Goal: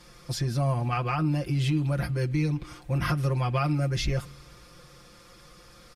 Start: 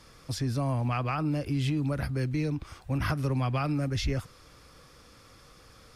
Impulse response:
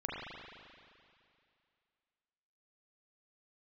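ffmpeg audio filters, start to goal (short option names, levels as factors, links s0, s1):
-filter_complex "[0:a]aecho=1:1:5.7:0.86,asplit=2[s0][s1];[s1]asuperstop=centerf=1000:order=4:qfactor=0.57[s2];[1:a]atrim=start_sample=2205[s3];[s2][s3]afir=irnorm=-1:irlink=0,volume=0.0841[s4];[s0][s4]amix=inputs=2:normalize=0"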